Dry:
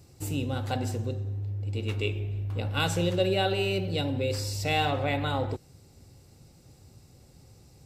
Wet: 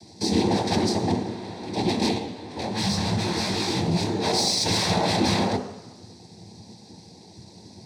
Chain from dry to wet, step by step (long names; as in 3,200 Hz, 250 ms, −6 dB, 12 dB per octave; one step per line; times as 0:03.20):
in parallel at −11 dB: log-companded quantiser 2 bits
on the sum: linear-phase brick-wall high-pass 150 Hz
wave folding −27.5 dBFS
cochlear-implant simulation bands 6
soft clipping −27 dBFS, distortion −18 dB
high-shelf EQ 4,000 Hz +6.5 dB
convolution reverb RT60 1.0 s, pre-delay 8 ms, DRR 6 dB
0:02.18–0:04.23: micro pitch shift up and down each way 50 cents → 34 cents
level +2.5 dB